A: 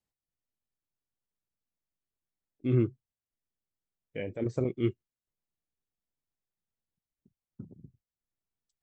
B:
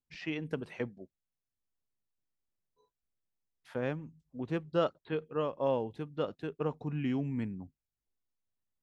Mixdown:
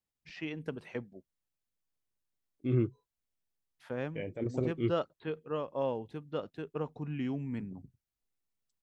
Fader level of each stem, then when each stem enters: -3.0 dB, -2.5 dB; 0.00 s, 0.15 s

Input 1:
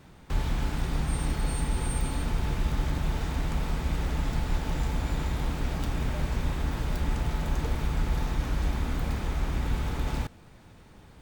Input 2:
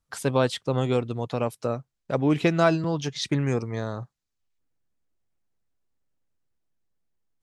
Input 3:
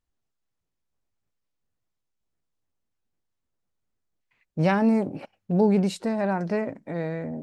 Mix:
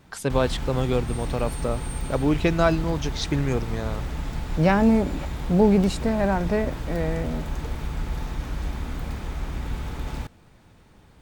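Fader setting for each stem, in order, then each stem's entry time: -1.5 dB, 0.0 dB, +2.5 dB; 0.00 s, 0.00 s, 0.00 s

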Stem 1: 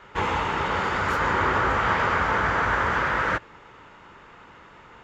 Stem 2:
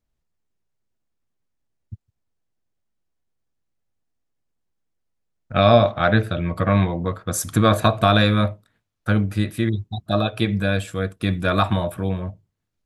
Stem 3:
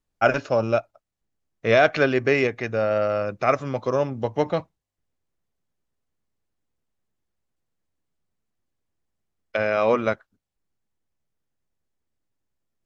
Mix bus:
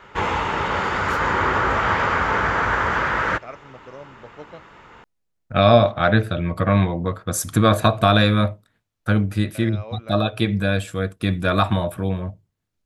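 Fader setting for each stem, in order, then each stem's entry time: +2.5 dB, +0.5 dB, -17.5 dB; 0.00 s, 0.00 s, 0.00 s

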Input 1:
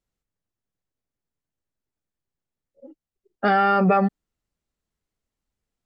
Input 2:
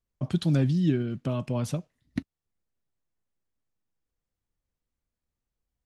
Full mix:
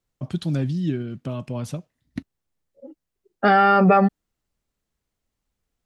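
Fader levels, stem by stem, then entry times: +3.0 dB, -0.5 dB; 0.00 s, 0.00 s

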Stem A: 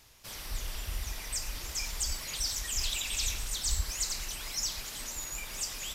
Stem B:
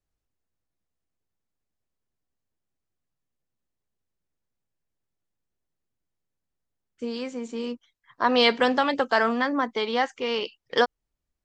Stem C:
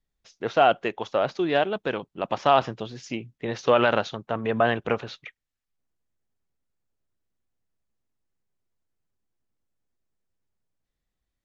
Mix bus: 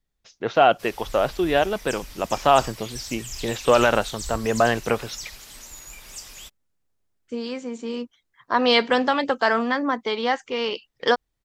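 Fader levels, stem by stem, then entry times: -3.0 dB, +1.5 dB, +2.5 dB; 0.55 s, 0.30 s, 0.00 s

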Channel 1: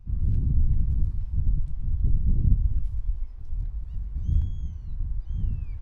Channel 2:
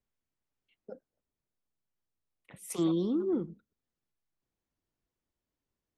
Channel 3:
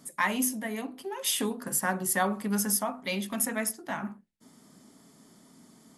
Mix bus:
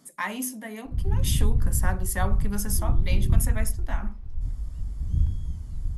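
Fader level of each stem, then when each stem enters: +0.5 dB, -16.5 dB, -3.0 dB; 0.85 s, 0.00 s, 0.00 s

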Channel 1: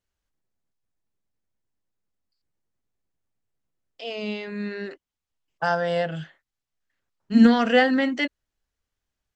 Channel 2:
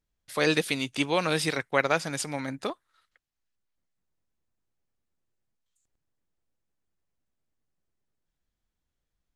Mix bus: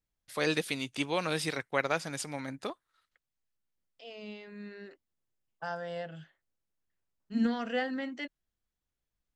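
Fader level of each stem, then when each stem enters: -14.0 dB, -5.5 dB; 0.00 s, 0.00 s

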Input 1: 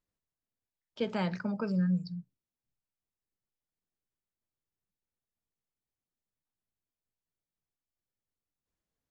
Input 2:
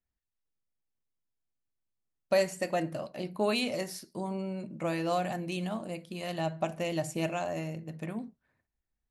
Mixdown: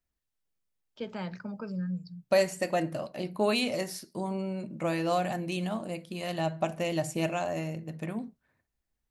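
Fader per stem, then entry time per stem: -5.0 dB, +2.0 dB; 0.00 s, 0.00 s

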